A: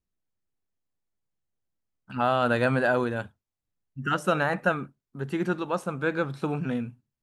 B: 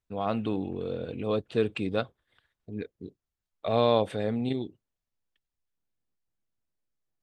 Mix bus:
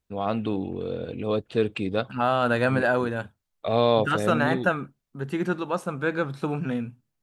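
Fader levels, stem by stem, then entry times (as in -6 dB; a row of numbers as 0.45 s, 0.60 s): +1.0 dB, +2.5 dB; 0.00 s, 0.00 s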